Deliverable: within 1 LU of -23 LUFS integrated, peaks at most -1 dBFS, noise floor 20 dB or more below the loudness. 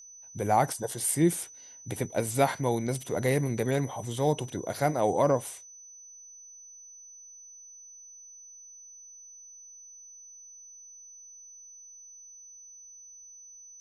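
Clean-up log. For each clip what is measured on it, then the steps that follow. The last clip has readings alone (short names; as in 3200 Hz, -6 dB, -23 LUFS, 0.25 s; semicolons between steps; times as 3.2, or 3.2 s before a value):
steady tone 6000 Hz; tone level -47 dBFS; loudness -28.5 LUFS; peak -10.0 dBFS; loudness target -23.0 LUFS
-> notch 6000 Hz, Q 30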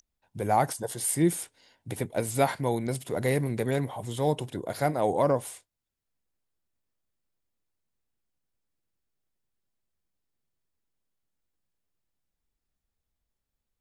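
steady tone none; loudness -28.5 LUFS; peak -10.0 dBFS; loudness target -23.0 LUFS
-> gain +5.5 dB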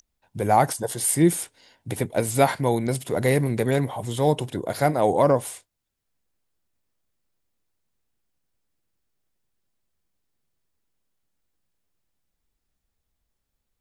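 loudness -23.0 LUFS; peak -4.5 dBFS; noise floor -80 dBFS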